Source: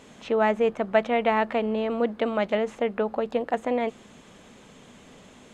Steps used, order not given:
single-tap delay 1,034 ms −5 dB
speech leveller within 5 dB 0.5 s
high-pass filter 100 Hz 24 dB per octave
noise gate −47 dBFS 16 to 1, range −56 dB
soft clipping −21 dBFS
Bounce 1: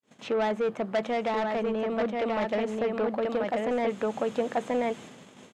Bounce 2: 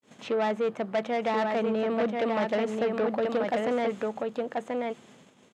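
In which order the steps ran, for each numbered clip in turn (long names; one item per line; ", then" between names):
single-tap delay, then noise gate, then high-pass filter, then soft clipping, then speech leveller
speech leveller, then noise gate, then single-tap delay, then soft clipping, then high-pass filter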